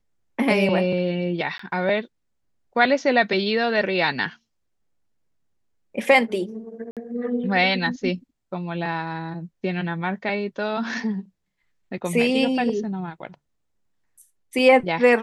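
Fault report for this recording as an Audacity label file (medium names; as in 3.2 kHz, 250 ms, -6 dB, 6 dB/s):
1.580000	1.590000	dropout 14 ms
6.910000	6.970000	dropout 57 ms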